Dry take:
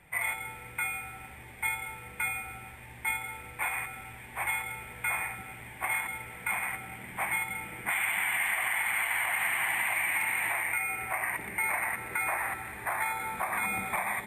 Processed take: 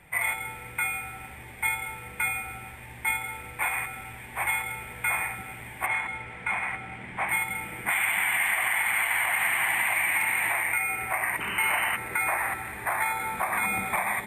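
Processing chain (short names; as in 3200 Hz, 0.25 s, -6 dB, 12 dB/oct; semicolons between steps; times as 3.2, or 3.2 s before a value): 5.86–7.29 air absorption 100 m; 11.4–11.97 painted sound noise 880–3100 Hz -37 dBFS; gain +4 dB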